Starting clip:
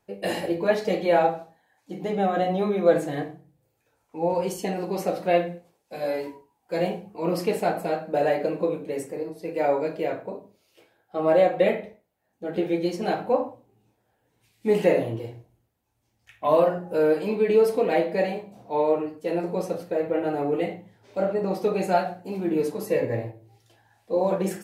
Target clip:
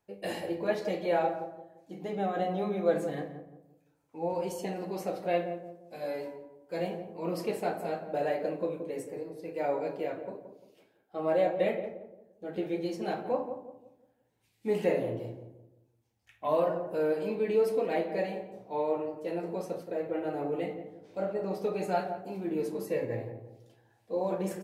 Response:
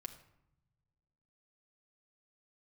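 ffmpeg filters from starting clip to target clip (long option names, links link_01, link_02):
-filter_complex "[0:a]asplit=2[link_01][link_02];[link_02]adelay=173,lowpass=frequency=870:poles=1,volume=-7.5dB,asplit=2[link_03][link_04];[link_04]adelay=173,lowpass=frequency=870:poles=1,volume=0.4,asplit=2[link_05][link_06];[link_06]adelay=173,lowpass=frequency=870:poles=1,volume=0.4,asplit=2[link_07][link_08];[link_08]adelay=173,lowpass=frequency=870:poles=1,volume=0.4,asplit=2[link_09][link_10];[link_10]adelay=173,lowpass=frequency=870:poles=1,volume=0.4[link_11];[link_01][link_03][link_05][link_07][link_09][link_11]amix=inputs=6:normalize=0,volume=-8dB"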